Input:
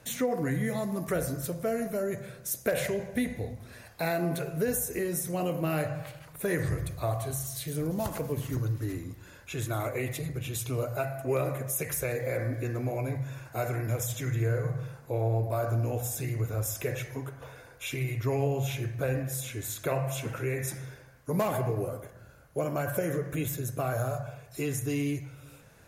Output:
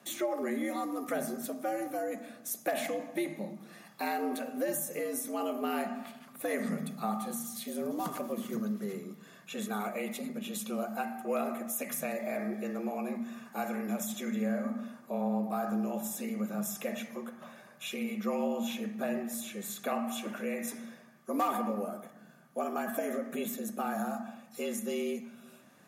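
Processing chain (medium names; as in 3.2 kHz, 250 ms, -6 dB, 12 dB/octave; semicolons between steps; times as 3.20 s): small resonant body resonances 1.1/3.3 kHz, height 11 dB, ringing for 45 ms; frequency shift +98 Hz; trim -4 dB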